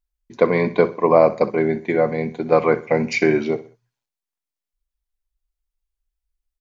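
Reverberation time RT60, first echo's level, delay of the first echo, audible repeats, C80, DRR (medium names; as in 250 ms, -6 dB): no reverb, -16.0 dB, 63 ms, 3, no reverb, no reverb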